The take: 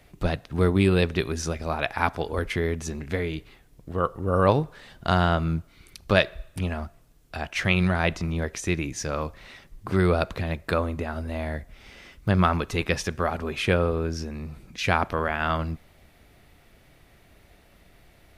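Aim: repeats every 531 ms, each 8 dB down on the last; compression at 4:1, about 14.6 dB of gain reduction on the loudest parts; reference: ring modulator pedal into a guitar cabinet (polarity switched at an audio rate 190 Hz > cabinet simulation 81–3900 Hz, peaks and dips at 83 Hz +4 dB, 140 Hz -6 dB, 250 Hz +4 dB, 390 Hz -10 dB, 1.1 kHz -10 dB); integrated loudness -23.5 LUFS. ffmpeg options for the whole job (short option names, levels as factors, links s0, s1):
-af "acompressor=threshold=0.02:ratio=4,aecho=1:1:531|1062|1593|2124|2655:0.398|0.159|0.0637|0.0255|0.0102,aeval=exprs='val(0)*sgn(sin(2*PI*190*n/s))':c=same,highpass=81,equalizer=f=83:t=q:w=4:g=4,equalizer=f=140:t=q:w=4:g=-6,equalizer=f=250:t=q:w=4:g=4,equalizer=f=390:t=q:w=4:g=-10,equalizer=f=1100:t=q:w=4:g=-10,lowpass=f=3900:w=0.5412,lowpass=f=3900:w=1.3066,volume=5.62"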